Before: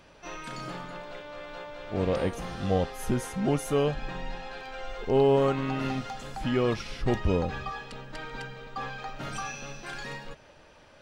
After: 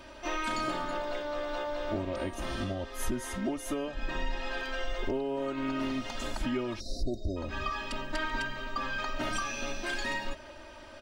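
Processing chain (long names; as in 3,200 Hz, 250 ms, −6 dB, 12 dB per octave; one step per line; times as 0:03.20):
downward compressor 16 to 1, threshold −34 dBFS, peak gain reduction 17 dB
time-frequency box erased 0:06.80–0:07.37, 760–3,700 Hz
comb filter 3.2 ms, depth 100%
level +3 dB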